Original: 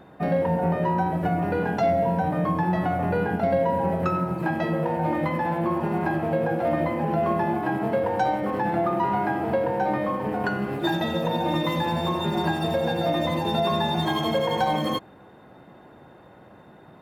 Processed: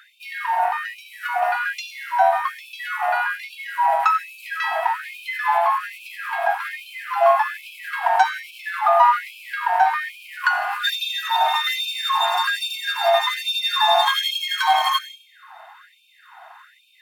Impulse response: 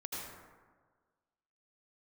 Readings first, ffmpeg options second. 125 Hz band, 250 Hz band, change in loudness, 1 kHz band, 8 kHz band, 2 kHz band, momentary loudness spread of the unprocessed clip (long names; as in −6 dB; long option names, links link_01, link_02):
below −40 dB, below −40 dB, +4.0 dB, +6.5 dB, can't be measured, +9.5 dB, 3 LU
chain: -filter_complex "[0:a]asplit=2[link_01][link_02];[1:a]atrim=start_sample=2205[link_03];[link_02][link_03]afir=irnorm=-1:irlink=0,volume=-5.5dB[link_04];[link_01][link_04]amix=inputs=2:normalize=0,afftfilt=real='re*gte(b*sr/1024,630*pow(2300/630,0.5+0.5*sin(2*PI*1.2*pts/sr)))':imag='im*gte(b*sr/1024,630*pow(2300/630,0.5+0.5*sin(2*PI*1.2*pts/sr)))':win_size=1024:overlap=0.75,volume=8.5dB"